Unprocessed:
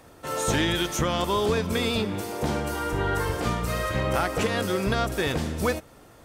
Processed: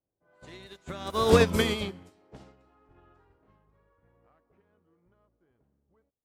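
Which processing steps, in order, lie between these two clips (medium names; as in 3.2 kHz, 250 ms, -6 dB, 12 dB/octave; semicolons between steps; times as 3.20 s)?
Doppler pass-by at 1.46 s, 41 m/s, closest 11 m; level-controlled noise filter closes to 570 Hz, open at -30.5 dBFS; upward expansion 2.5:1, over -41 dBFS; trim +8 dB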